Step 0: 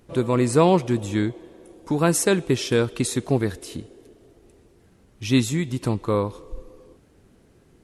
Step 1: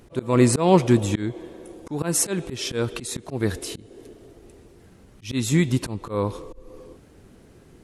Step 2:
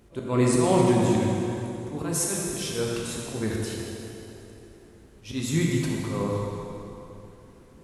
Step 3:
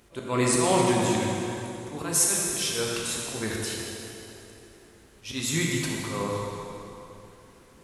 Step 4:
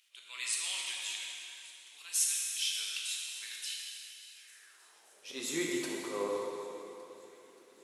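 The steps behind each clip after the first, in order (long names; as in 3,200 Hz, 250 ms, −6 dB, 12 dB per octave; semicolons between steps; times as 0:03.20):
volume swells 244 ms; level +5.5 dB
dense smooth reverb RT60 3 s, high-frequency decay 0.8×, DRR −3 dB; level −7 dB
tilt shelving filter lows −5.5 dB, about 660 Hz
delay with a high-pass on its return 580 ms, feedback 67%, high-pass 1,700 Hz, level −21.5 dB; high-pass filter sweep 2,900 Hz → 380 Hz, 0:04.31–0:05.43; level −8.5 dB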